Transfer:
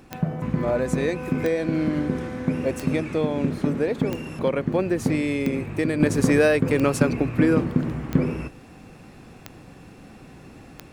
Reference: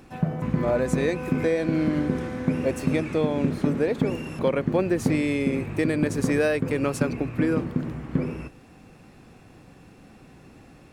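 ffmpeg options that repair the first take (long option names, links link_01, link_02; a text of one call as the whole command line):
ffmpeg -i in.wav -af "adeclick=threshold=4,asetnsamples=nb_out_samples=441:pad=0,asendcmd='6 volume volume -4.5dB',volume=0dB" out.wav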